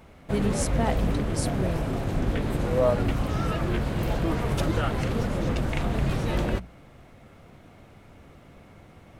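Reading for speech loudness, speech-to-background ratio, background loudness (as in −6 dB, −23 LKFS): −32.0 LKFS, −4.5 dB, −27.5 LKFS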